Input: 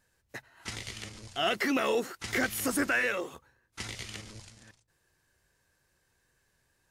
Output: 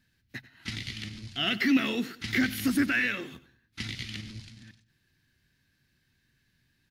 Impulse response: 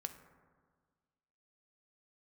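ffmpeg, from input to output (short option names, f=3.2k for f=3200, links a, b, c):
-af "equalizer=f=125:t=o:w=1:g=6,equalizer=f=250:t=o:w=1:g=10,equalizer=f=500:t=o:w=1:g=-12,equalizer=f=1k:t=o:w=1:g=-8,equalizer=f=2k:t=o:w=1:g=4,equalizer=f=4k:t=o:w=1:g=7,equalizer=f=8k:t=o:w=1:g=-10,aecho=1:1:94|188|282:0.133|0.048|0.0173"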